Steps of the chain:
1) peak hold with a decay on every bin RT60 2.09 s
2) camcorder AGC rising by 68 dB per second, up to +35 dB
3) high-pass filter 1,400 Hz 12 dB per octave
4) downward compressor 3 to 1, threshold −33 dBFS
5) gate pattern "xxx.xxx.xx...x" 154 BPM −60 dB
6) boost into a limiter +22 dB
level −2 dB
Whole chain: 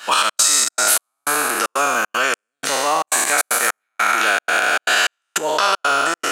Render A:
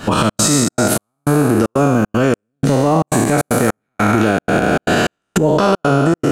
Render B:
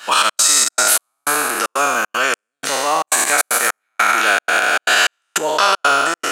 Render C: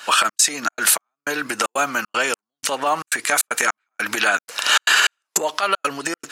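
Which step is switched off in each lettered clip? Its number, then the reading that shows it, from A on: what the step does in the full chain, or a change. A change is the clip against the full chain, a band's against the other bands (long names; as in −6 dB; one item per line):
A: 3, 250 Hz band +24.5 dB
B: 4, change in crest factor −2.0 dB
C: 1, 250 Hz band +4.0 dB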